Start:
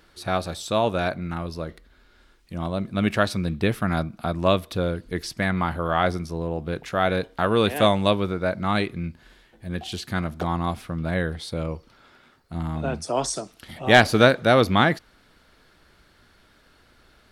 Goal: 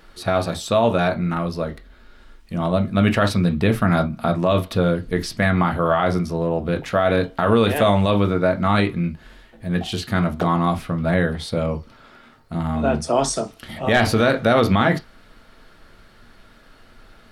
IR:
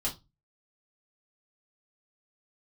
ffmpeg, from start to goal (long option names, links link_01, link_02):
-filter_complex "[0:a]asplit=2[link_01][link_02];[1:a]atrim=start_sample=2205,atrim=end_sample=3087,lowpass=3200[link_03];[link_02][link_03]afir=irnorm=-1:irlink=0,volume=-6.5dB[link_04];[link_01][link_04]amix=inputs=2:normalize=0,alimiter=level_in=10dB:limit=-1dB:release=50:level=0:latency=1,volume=-6.5dB"